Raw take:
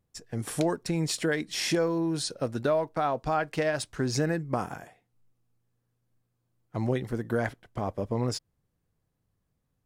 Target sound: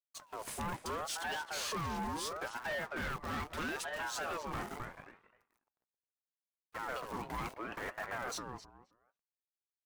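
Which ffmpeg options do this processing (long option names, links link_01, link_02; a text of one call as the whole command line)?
ffmpeg -i in.wav -filter_complex "[0:a]acrossover=split=240|2600[link_01][link_02][link_03];[link_01]acompressor=threshold=-41dB:ratio=6[link_04];[link_04][link_02][link_03]amix=inputs=3:normalize=0,acrusher=bits=8:dc=4:mix=0:aa=0.000001,asplit=2[link_05][link_06];[link_06]adelay=264,lowpass=frequency=2100:poles=1,volume=-7dB,asplit=2[link_07][link_08];[link_08]adelay=264,lowpass=frequency=2100:poles=1,volume=0.18,asplit=2[link_09][link_10];[link_10]adelay=264,lowpass=frequency=2100:poles=1,volume=0.18[link_11];[link_07][link_09][link_11]amix=inputs=3:normalize=0[link_12];[link_05][link_12]amix=inputs=2:normalize=0,flanger=delay=0.1:depth=7:regen=-66:speed=1.6:shape=sinusoidal,asoftclip=type=hard:threshold=-33.5dB,aeval=exprs='val(0)*sin(2*PI*880*n/s+880*0.4/0.75*sin(2*PI*0.75*n/s))':channel_layout=same,volume=1dB" out.wav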